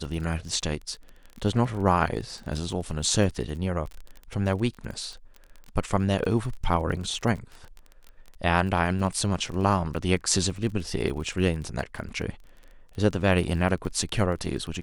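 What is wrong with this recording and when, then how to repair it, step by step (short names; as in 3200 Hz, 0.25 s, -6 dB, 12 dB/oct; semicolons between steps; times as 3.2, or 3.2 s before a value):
crackle 30/s -34 dBFS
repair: de-click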